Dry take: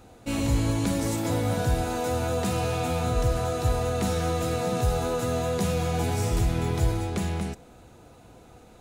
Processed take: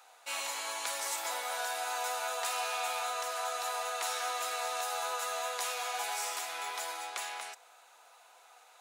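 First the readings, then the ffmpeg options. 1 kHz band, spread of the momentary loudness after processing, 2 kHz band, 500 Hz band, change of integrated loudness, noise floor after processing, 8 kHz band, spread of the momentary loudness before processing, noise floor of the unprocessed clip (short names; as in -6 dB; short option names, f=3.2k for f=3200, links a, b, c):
-2.5 dB, 4 LU, 0.0 dB, -13.0 dB, -8.0 dB, -60 dBFS, 0.0 dB, 3 LU, -52 dBFS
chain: -af "highpass=f=800:w=0.5412,highpass=f=800:w=1.3066"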